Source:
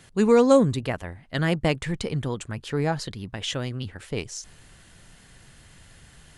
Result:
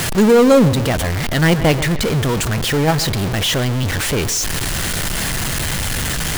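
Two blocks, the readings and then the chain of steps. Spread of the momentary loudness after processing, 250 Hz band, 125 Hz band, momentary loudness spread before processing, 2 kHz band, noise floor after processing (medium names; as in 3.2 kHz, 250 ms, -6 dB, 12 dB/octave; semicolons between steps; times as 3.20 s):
8 LU, +8.5 dB, +11.5 dB, 15 LU, +13.5 dB, -21 dBFS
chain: jump at every zero crossing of -24.5 dBFS; in parallel at -2.5 dB: level held to a coarse grid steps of 20 dB; on the sum: bucket-brigade echo 134 ms, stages 4096, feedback 37%, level -16 dB; power-law waveshaper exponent 0.7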